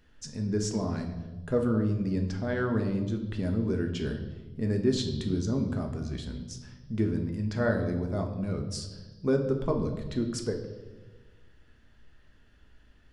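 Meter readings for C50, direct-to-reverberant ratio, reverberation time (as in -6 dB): 8.0 dB, 3.5 dB, 1.3 s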